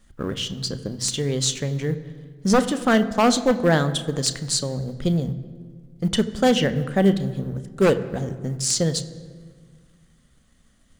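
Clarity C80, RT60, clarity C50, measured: 15.0 dB, 1.7 s, 14.0 dB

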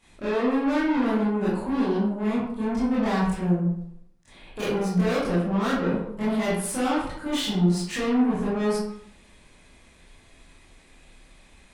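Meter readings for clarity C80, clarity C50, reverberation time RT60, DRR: 4.0 dB, 0.0 dB, 0.75 s, −10.5 dB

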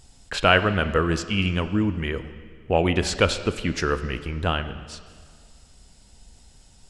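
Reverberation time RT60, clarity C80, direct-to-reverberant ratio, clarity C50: 1.9 s, 13.0 dB, 11.0 dB, 12.0 dB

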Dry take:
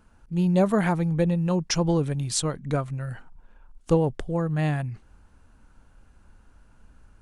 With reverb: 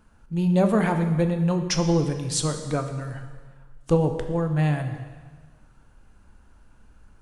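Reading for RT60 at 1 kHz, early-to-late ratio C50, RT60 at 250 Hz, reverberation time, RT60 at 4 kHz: 1.5 s, 8.5 dB, 1.4 s, 1.5 s, 1.4 s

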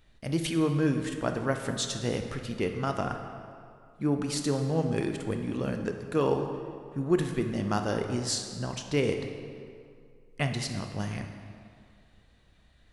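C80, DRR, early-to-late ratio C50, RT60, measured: 7.5 dB, 5.0 dB, 6.0 dB, 2.3 s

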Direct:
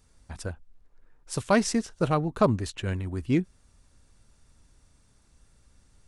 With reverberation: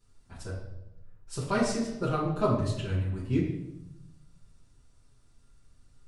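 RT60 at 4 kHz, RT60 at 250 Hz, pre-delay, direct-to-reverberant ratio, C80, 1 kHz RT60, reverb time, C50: 0.70 s, 1.3 s, 5 ms, −9.0 dB, 6.5 dB, 0.80 s, 0.90 s, 3.0 dB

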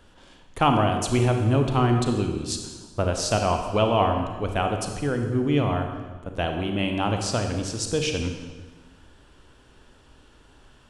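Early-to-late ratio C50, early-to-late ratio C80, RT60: 5.5 dB, 7.0 dB, 1.4 s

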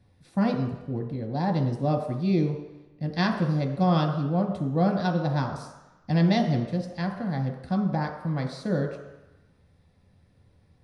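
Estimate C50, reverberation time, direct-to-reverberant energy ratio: 6.0 dB, 1.0 s, 1.5 dB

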